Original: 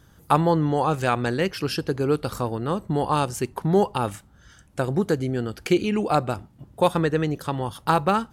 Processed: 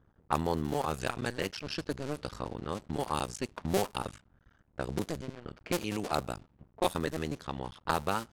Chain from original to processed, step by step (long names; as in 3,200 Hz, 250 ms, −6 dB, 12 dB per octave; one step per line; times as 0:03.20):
sub-harmonics by changed cycles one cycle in 2, muted
low-pass that shuts in the quiet parts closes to 1,100 Hz, open at −20.5 dBFS
high-shelf EQ 3,400 Hz +10.5 dB
level −8.5 dB